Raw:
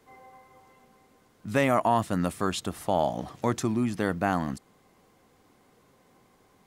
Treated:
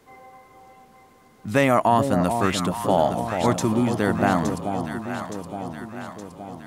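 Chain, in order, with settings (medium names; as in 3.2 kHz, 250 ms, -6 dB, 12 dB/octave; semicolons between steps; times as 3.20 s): echo whose repeats swap between lows and highs 434 ms, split 930 Hz, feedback 74%, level -5.5 dB; trim +5 dB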